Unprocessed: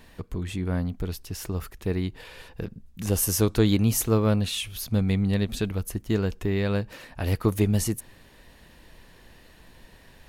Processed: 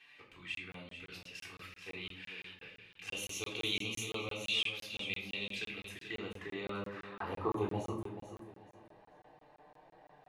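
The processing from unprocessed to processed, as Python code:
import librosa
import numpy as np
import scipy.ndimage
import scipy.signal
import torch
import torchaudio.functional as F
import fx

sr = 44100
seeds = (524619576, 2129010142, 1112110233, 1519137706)

p1 = fx.env_flanger(x, sr, rest_ms=8.0, full_db=-22.5)
p2 = fx.filter_sweep_bandpass(p1, sr, from_hz=2500.0, to_hz=720.0, start_s=5.63, end_s=8.1, q=3.3)
p3 = p2 + fx.echo_feedback(p2, sr, ms=435, feedback_pct=25, wet_db=-10.0, dry=0)
p4 = fx.room_shoebox(p3, sr, seeds[0], volume_m3=750.0, walls='furnished', distance_m=3.7)
p5 = fx.buffer_crackle(p4, sr, first_s=0.55, period_s=0.17, block=1024, kind='zero')
y = p5 * librosa.db_to_amplitude(3.0)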